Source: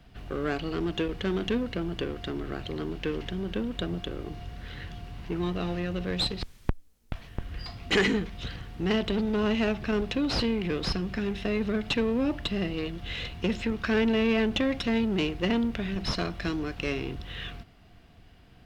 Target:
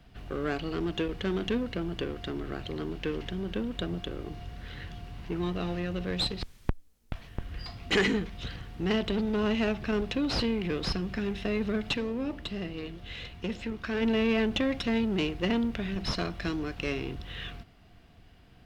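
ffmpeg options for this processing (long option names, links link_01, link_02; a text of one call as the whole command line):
ffmpeg -i in.wav -filter_complex "[0:a]asplit=3[link_01][link_02][link_03];[link_01]afade=type=out:start_time=11.96:duration=0.02[link_04];[link_02]flanger=delay=7.2:depth=9.8:regen=-87:speed=1.9:shape=triangular,afade=type=in:start_time=11.96:duration=0.02,afade=type=out:start_time=14.01:duration=0.02[link_05];[link_03]afade=type=in:start_time=14.01:duration=0.02[link_06];[link_04][link_05][link_06]amix=inputs=3:normalize=0,volume=-1.5dB" out.wav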